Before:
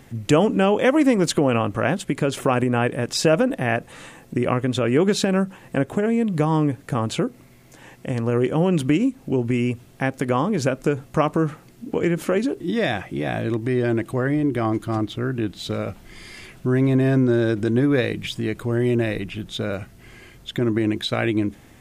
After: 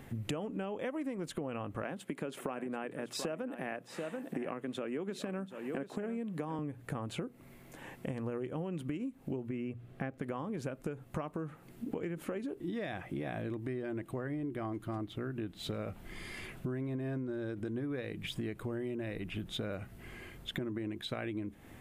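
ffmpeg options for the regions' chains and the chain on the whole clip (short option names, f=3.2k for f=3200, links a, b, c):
-filter_complex "[0:a]asettb=1/sr,asplit=3[a][b][c];[a]atrim=end=1.824[d];[b]atrim=start=1.82:end=6.59,asetpts=PTS-STARTPTS,afade=t=in:d=0.004:c=qsin,afade=t=out:st=4.766:d=0.004:c=qsin,highpass=f=170:w=0.5412,highpass=f=170:w=1.3066,aecho=1:1:736:0.2,atrim=end_sample=210357[e];[c]atrim=start=6.586[f];[d][e]acrossfade=d=0.004:c1=hsin:c2=qsin[g];[g][f]acrossfade=d=0.004:c1=qsin:c2=hsin,asettb=1/sr,asplit=3[h][i][j];[h]atrim=end=9.494[k];[i]atrim=start=9.49:end=10.22,asetpts=PTS-STARTPTS,afade=t=in:d=0.004:c=qsin,afade=t=out:st=0.726:d=0.004:c=qsin,lowpass=f=2.2k:p=1,bandreject=f=920:w=5.6[l];[j]atrim=start=10.216[m];[k][l]acrossfade=d=0.004:c1=hsin:c2=qsin[n];[n][m]acrossfade=d=0.004:c1=qsin:c2=hsin,equalizer=f=5.7k:t=o:w=1.2:g=-8.5,bandreject=f=60:t=h:w=6,bandreject=f=120:t=h:w=6,acompressor=threshold=-32dB:ratio=10,volume=-3dB"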